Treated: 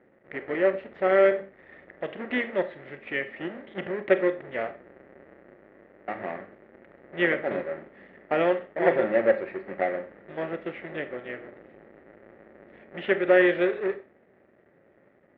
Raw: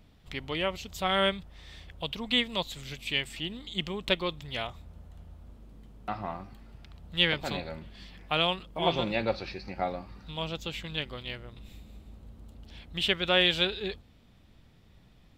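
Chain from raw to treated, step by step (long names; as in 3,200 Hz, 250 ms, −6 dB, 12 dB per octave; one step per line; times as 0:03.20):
each half-wave held at its own peak
loudspeaker in its box 260–2,000 Hz, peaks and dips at 370 Hz +7 dB, 560 Hz +9 dB, 1,000 Hz −7 dB, 1,900 Hz +10 dB
four-comb reverb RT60 0.34 s, combs from 28 ms, DRR 10 dB
level −2.5 dB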